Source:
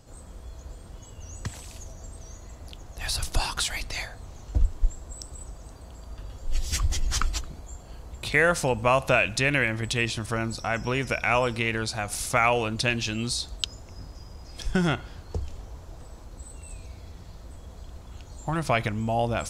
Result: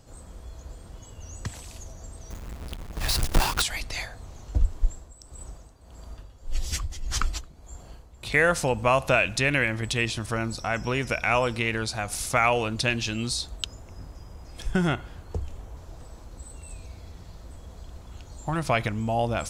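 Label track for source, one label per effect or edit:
2.300000	3.620000	half-waves squared off
4.880000	8.300000	tremolo 1.7 Hz, depth 70%
13.470000	15.770000	bell 4900 Hz -6.5 dB 0.82 oct

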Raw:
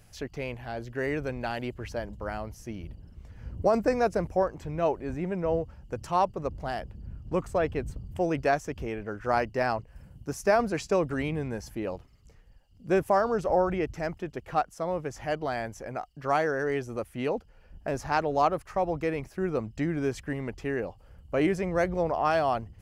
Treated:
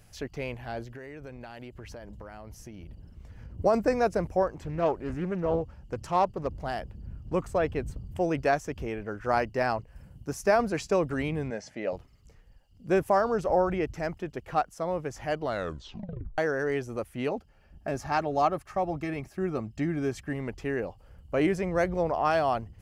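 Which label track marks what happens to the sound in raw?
0.830000	3.590000	compressor 10:1, threshold -39 dBFS
4.530000	6.470000	Doppler distortion depth 0.34 ms
11.500000	11.930000	speaker cabinet 200–7200 Hz, peaks and dips at 340 Hz -6 dB, 620 Hz +9 dB, 1000 Hz -7 dB, 2000 Hz +7 dB
15.430000	15.430000	tape stop 0.95 s
17.290000	20.350000	notch comb 490 Hz

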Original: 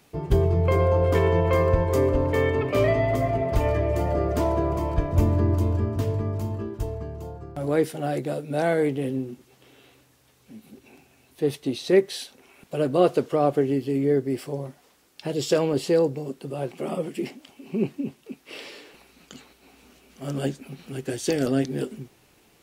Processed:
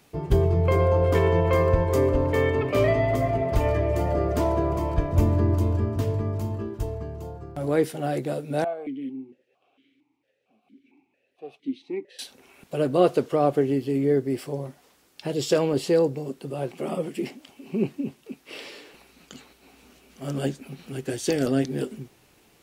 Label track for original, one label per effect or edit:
8.640000	12.190000	vowel sequencer 4.4 Hz

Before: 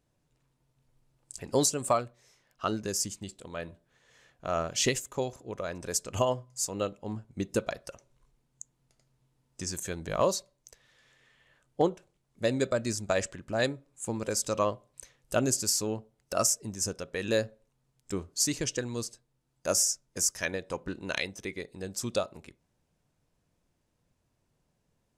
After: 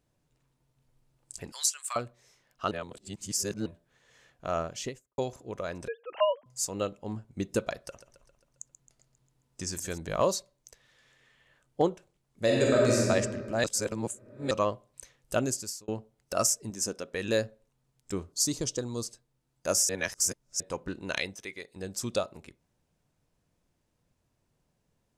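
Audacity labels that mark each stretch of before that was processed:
1.520000	1.960000	HPF 1400 Hz 24 dB/oct
2.710000	3.660000	reverse
4.470000	5.180000	studio fade out
5.880000	6.460000	sine-wave speech
7.790000	9.980000	feedback echo 0.134 s, feedback 56%, level -12.5 dB
12.440000	13.040000	reverb throw, RT60 1.9 s, DRR -4.5 dB
13.640000	14.510000	reverse
15.330000	15.880000	fade out
16.700000	17.140000	resonant low shelf 170 Hz -8 dB, Q 1.5
18.320000	19.050000	band shelf 2100 Hz -10 dB 1.1 oct
19.890000	20.600000	reverse
21.350000	21.760000	low shelf 450 Hz -11.5 dB

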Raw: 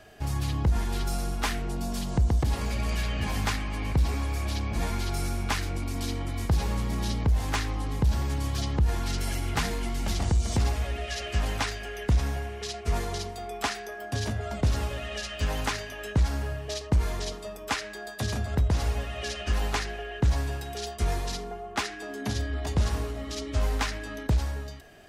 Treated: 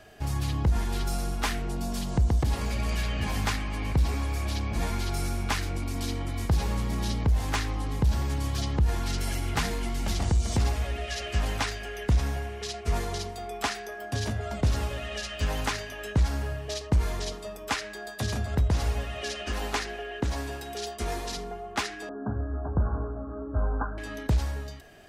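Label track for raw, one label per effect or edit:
19.180000	21.370000	resonant low shelf 190 Hz -6.5 dB, Q 1.5
22.090000	23.980000	Chebyshev low-pass 1600 Hz, order 10

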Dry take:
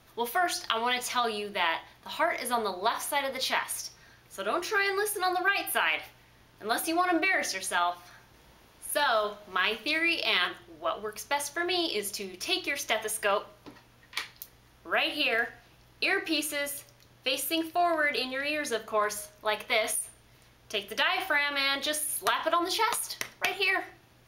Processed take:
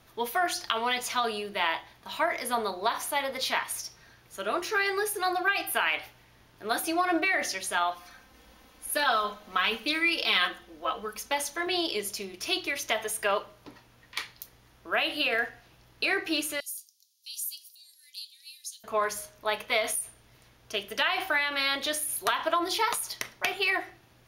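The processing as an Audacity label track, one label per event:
7.950000	11.670000	comb 3.9 ms
16.600000	18.840000	inverse Chebyshev high-pass stop band from 1400 Hz, stop band 60 dB

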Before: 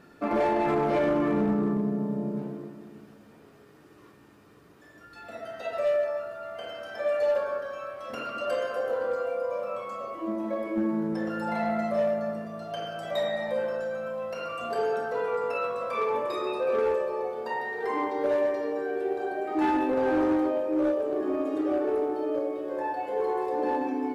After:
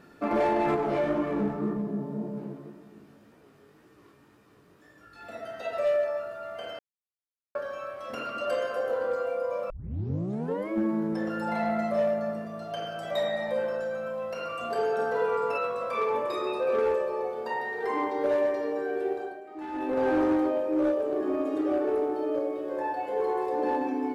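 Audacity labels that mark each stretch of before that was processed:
0.760000	5.210000	chorus 1.9 Hz, delay 15.5 ms, depth 6.5 ms
6.790000	7.550000	mute
9.700000	9.700000	tape start 1.00 s
14.940000	15.580000	doubler 48 ms -4 dB
19.080000	20.020000	dip -13.5 dB, fades 0.33 s

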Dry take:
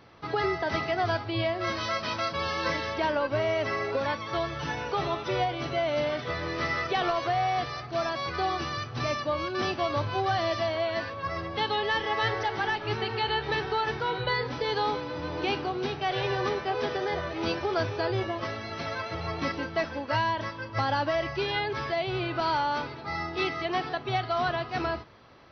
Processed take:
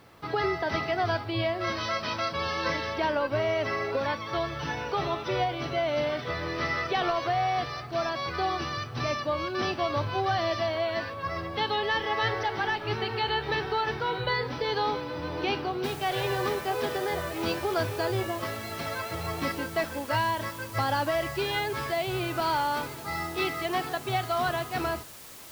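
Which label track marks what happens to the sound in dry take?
15.840000	15.840000	noise floor step -69 dB -47 dB

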